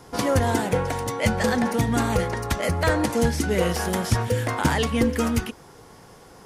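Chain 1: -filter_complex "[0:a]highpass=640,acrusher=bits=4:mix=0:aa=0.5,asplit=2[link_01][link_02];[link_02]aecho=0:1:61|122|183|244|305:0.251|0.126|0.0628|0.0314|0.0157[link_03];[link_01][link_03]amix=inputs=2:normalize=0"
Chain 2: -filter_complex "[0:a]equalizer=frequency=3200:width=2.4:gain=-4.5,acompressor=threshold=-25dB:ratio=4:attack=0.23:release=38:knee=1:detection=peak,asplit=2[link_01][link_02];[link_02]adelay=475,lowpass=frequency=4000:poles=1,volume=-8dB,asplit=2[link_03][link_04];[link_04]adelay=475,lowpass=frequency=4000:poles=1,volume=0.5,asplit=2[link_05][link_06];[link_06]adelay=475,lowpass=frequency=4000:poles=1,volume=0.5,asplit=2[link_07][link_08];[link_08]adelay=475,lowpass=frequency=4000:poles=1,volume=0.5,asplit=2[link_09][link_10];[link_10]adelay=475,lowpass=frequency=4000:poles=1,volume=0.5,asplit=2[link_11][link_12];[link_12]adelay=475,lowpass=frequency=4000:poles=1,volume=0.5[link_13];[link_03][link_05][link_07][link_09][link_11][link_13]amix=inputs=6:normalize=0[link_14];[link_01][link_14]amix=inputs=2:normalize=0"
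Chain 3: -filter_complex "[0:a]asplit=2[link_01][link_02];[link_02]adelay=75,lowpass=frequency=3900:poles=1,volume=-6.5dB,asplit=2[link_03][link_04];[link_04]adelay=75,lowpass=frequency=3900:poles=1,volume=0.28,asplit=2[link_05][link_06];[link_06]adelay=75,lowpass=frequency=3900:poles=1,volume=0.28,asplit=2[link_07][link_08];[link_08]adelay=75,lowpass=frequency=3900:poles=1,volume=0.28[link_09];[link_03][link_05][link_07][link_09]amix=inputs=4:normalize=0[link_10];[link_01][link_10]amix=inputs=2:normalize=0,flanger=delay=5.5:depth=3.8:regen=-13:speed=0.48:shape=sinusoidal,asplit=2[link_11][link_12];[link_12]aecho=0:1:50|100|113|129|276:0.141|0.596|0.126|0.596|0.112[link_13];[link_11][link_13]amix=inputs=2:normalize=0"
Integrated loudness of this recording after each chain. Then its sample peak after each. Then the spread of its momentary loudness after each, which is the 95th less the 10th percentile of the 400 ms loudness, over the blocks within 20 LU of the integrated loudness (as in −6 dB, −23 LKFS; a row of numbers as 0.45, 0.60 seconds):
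−27.5, −29.5, −24.0 LKFS; −9.0, −18.0, −10.5 dBFS; 5, 6, 4 LU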